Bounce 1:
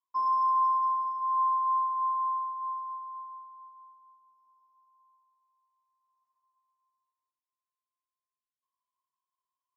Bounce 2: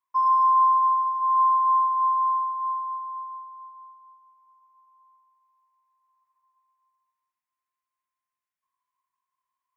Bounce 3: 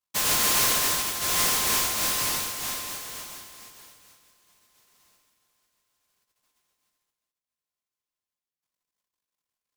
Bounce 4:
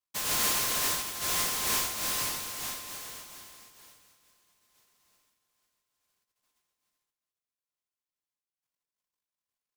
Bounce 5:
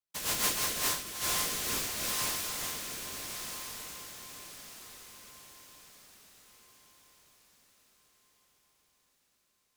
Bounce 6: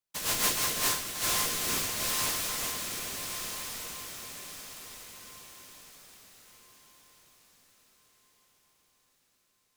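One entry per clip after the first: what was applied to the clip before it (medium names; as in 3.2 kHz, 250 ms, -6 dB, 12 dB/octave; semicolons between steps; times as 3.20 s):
graphic EQ 500/1000/2000/4000 Hz -6/+6/+9/-5 dB
delay time shaken by noise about 5.8 kHz, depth 0.27 ms; trim -4 dB
tremolo 2.3 Hz, depth 36%; trim -4 dB
rotary cabinet horn 6 Hz, later 0.8 Hz, at 0.43 s; echo that smears into a reverb 1243 ms, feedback 41%, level -7 dB
on a send at -12 dB: reverberation RT60 0.55 s, pre-delay 4 ms; on the sum: bit-crushed delay 391 ms, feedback 80%, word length 9-bit, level -13 dB; trim +2 dB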